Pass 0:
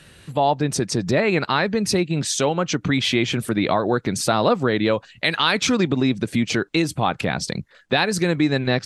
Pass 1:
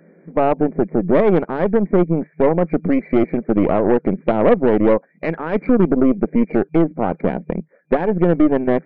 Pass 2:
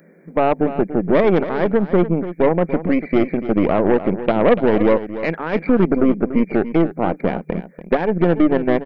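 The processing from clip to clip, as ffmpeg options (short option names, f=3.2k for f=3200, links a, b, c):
-af "afftfilt=real='re*between(b*sr/4096,160,2400)':imag='im*between(b*sr/4096,160,2400)':win_size=4096:overlap=0.75,lowshelf=f=770:t=q:w=1.5:g=11.5,aeval=exprs='1.68*(cos(1*acos(clip(val(0)/1.68,-1,1)))-cos(1*PI/2))+0.188*(cos(6*acos(clip(val(0)/1.68,-1,1)))-cos(6*PI/2))':c=same,volume=-7.5dB"
-af "crystalizer=i=4:c=0,aecho=1:1:289:0.237,volume=-1dB"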